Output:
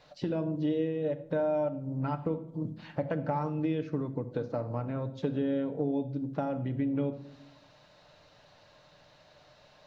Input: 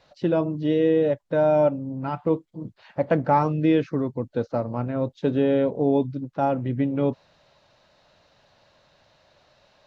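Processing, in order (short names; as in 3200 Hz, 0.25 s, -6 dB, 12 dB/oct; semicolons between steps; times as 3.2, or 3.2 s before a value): compressor 6:1, threshold -30 dBFS, peak gain reduction 14.5 dB; on a send: reverb RT60 0.85 s, pre-delay 7 ms, DRR 8 dB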